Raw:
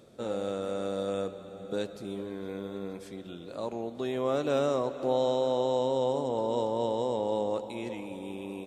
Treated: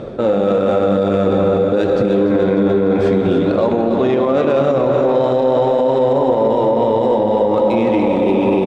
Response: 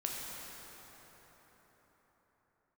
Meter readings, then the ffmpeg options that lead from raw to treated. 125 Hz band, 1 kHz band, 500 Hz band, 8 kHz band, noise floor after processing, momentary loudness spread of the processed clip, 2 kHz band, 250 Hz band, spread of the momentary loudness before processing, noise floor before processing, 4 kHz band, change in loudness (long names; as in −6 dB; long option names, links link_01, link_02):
+19.0 dB, +15.5 dB, +16.5 dB, can't be measured, −17 dBFS, 1 LU, +17.0 dB, +19.5 dB, 12 LU, −45 dBFS, +9.0 dB, +16.5 dB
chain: -filter_complex "[0:a]areverse,acompressor=threshold=-36dB:ratio=6,areverse,flanger=delay=1.3:depth=9:regen=60:speed=0.49:shape=triangular,adynamicsmooth=sensitivity=6.5:basefreq=2000,aecho=1:1:295|590|885|1180|1475|1770|2065:0.398|0.227|0.129|0.0737|0.042|0.024|0.0137,asplit=2[link_01][link_02];[1:a]atrim=start_sample=2205[link_03];[link_02][link_03]afir=irnorm=-1:irlink=0,volume=-2.5dB[link_04];[link_01][link_04]amix=inputs=2:normalize=0,alimiter=level_in=34.5dB:limit=-1dB:release=50:level=0:latency=1,volume=-5.5dB"